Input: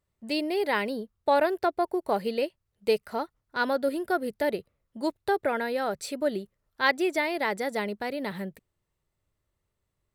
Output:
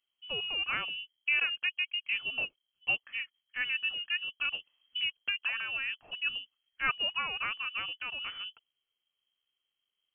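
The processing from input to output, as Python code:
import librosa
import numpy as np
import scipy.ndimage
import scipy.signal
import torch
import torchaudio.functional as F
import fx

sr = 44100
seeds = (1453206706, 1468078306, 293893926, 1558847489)

y = fx.freq_invert(x, sr, carrier_hz=3200)
y = fx.band_squash(y, sr, depth_pct=100, at=(4.45, 5.38))
y = y * librosa.db_to_amplitude(-6.5)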